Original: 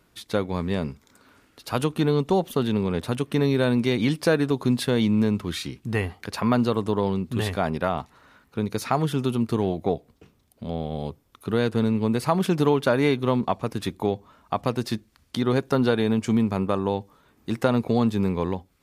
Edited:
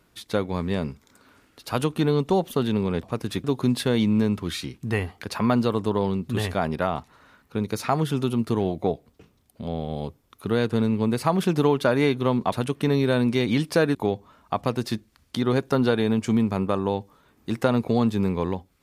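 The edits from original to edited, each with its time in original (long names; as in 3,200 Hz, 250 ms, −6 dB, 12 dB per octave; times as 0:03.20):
0:03.03–0:04.46: swap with 0:13.54–0:13.95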